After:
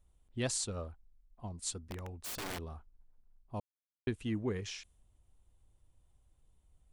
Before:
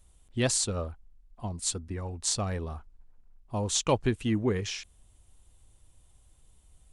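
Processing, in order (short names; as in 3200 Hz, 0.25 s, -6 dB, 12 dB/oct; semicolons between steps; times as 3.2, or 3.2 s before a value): 1.8–2.62 wrapped overs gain 28 dB; 3.6–4.07 mute; mismatched tape noise reduction decoder only; gain -8 dB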